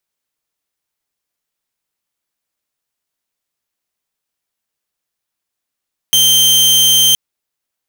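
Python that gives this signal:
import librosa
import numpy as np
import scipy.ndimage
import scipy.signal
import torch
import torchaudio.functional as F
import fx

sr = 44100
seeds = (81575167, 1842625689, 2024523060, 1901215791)

y = 10.0 ** (-5.0 / 20.0) * (2.0 * np.mod(3140.0 * (np.arange(round(1.02 * sr)) / sr), 1.0) - 1.0)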